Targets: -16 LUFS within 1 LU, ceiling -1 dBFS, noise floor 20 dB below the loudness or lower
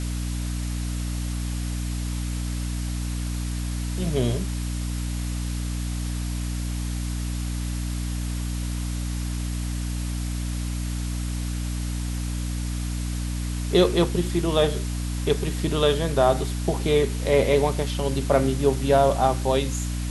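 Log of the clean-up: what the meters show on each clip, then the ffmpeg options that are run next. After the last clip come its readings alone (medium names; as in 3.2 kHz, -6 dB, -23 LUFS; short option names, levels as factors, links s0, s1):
hum 60 Hz; highest harmonic 300 Hz; hum level -25 dBFS; noise floor -28 dBFS; noise floor target -46 dBFS; loudness -26.0 LUFS; peak level -5.5 dBFS; loudness target -16.0 LUFS
-> -af "bandreject=f=60:t=h:w=4,bandreject=f=120:t=h:w=4,bandreject=f=180:t=h:w=4,bandreject=f=240:t=h:w=4,bandreject=f=300:t=h:w=4"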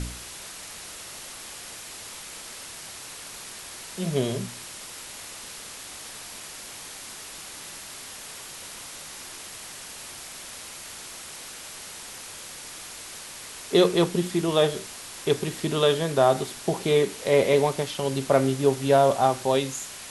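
hum not found; noise floor -41 dBFS; noise floor target -48 dBFS
-> -af "afftdn=nr=7:nf=-41"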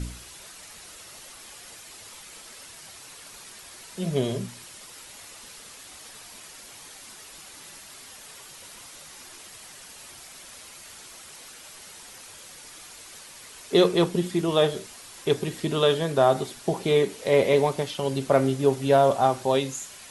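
noise floor -46 dBFS; loudness -23.5 LUFS; peak level -6.5 dBFS; loudness target -16.0 LUFS
-> -af "volume=2.37,alimiter=limit=0.891:level=0:latency=1"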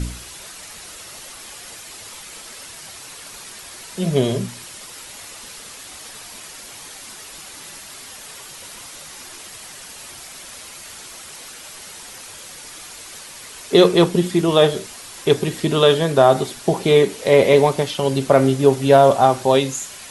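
loudness -16.5 LUFS; peak level -1.0 dBFS; noise floor -38 dBFS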